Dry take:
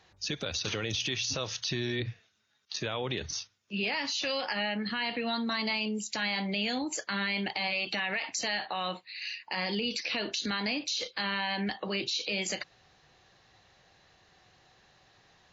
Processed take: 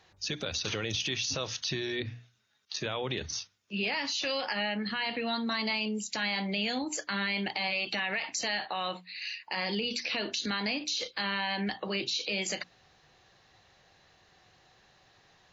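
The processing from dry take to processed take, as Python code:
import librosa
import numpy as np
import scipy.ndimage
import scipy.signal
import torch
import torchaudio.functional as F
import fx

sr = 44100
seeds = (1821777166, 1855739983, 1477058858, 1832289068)

y = fx.hum_notches(x, sr, base_hz=60, count=5)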